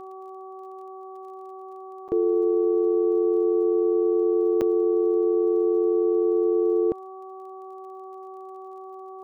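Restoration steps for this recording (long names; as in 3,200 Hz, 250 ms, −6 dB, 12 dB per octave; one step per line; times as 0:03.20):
click removal
hum removal 379.6 Hz, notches 3
repair the gap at 0:02.08/0:04.61, 7 ms
noise reduction from a noise print 30 dB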